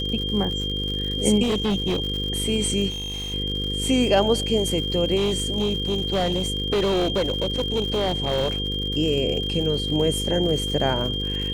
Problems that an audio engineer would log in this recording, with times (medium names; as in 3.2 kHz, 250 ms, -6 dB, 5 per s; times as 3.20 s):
buzz 50 Hz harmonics 10 -29 dBFS
crackle 110 per s -30 dBFS
whine 3.2 kHz -27 dBFS
1.42–2.02 s: clipped -19 dBFS
2.89–3.34 s: clipped -28 dBFS
5.16–8.82 s: clipped -18 dBFS